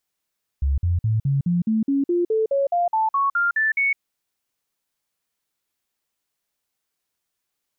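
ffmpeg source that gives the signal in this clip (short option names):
-f lavfi -i "aevalsrc='0.141*clip(min(mod(t,0.21),0.16-mod(t,0.21))/0.005,0,1)*sin(2*PI*69.3*pow(2,floor(t/0.21)/3)*mod(t,0.21))':d=3.36:s=44100"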